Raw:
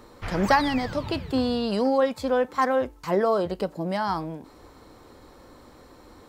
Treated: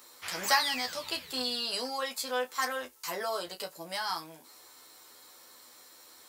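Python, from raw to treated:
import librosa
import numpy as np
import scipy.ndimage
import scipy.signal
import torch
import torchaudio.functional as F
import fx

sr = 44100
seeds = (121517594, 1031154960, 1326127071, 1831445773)

y = np.diff(x, prepend=0.0)
y = fx.room_early_taps(y, sr, ms=(12, 32), db=(-3.5, -10.5))
y = y * 10.0 ** (7.5 / 20.0)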